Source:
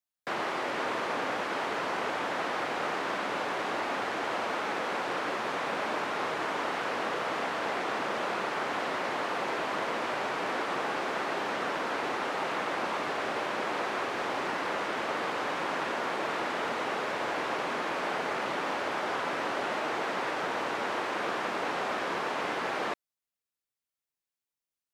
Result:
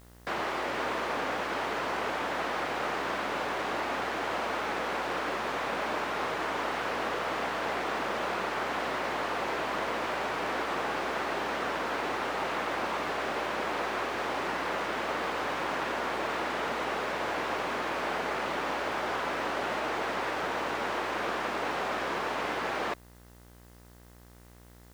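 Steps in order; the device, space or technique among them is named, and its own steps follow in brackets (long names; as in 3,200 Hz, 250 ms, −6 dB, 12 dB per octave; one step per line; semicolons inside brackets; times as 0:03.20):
video cassette with head-switching buzz (hum with harmonics 60 Hz, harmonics 35, −54 dBFS −5 dB per octave; white noise bed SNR 30 dB)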